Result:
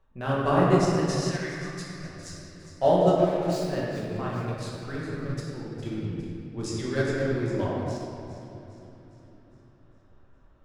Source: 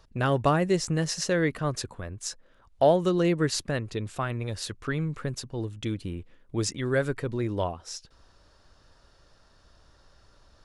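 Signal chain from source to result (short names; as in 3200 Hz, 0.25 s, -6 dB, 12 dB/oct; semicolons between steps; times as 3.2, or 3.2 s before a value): Wiener smoothing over 9 samples; 0.98–2.04 inverse Chebyshev band-stop 190–470 Hz, stop band 70 dB; 3.16–3.64 hard clip -33 dBFS, distortion -11 dB; 6.76–7.35 bell 4300 Hz +12.5 dB 0.74 oct; thin delay 0.408 s, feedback 52%, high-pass 1900 Hz, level -11.5 dB; shoebox room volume 200 m³, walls hard, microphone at 1.1 m; upward expander 1.5:1, over -26 dBFS; gain -4 dB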